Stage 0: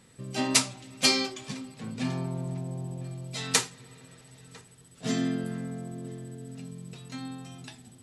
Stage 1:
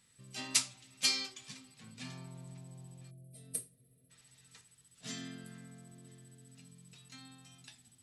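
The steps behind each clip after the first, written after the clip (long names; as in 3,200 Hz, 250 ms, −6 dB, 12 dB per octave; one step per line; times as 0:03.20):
guitar amp tone stack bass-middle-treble 5-5-5
gain on a spectral selection 0:03.10–0:04.10, 710–8,200 Hz −24 dB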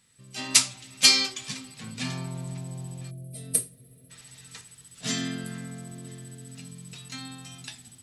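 automatic gain control gain up to 10.5 dB
level +3.5 dB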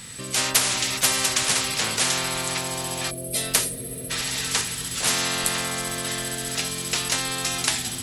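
every bin compressed towards the loudest bin 10 to 1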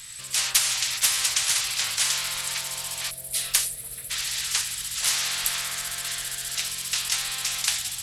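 guitar amp tone stack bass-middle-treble 10-0-10
echo through a band-pass that steps 144 ms, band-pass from 240 Hz, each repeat 1.4 octaves, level −11 dB
highs frequency-modulated by the lows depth 0.55 ms
level +1 dB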